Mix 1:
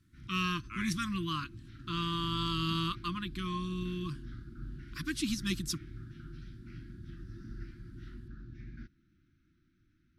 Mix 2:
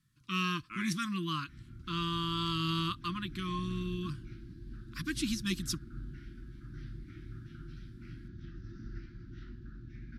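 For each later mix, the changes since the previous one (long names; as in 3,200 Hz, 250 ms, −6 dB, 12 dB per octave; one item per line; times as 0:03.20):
background: entry +1.35 s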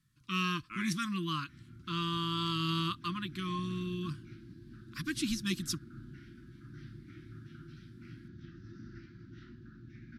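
background: add high-pass filter 110 Hz 12 dB per octave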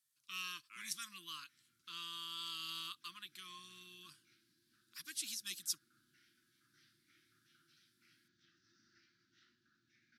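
master: add first difference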